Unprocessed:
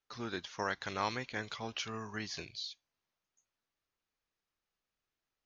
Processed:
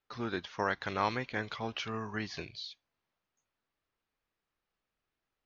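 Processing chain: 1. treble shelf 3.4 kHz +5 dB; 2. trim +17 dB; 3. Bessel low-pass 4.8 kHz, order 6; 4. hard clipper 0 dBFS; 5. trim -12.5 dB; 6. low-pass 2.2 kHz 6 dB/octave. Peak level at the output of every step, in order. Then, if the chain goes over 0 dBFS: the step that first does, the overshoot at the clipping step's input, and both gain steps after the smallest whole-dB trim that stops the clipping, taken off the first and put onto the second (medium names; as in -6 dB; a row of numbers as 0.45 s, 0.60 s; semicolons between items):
-19.0 dBFS, -2.0 dBFS, -2.5 dBFS, -2.5 dBFS, -15.0 dBFS, -16.5 dBFS; nothing clips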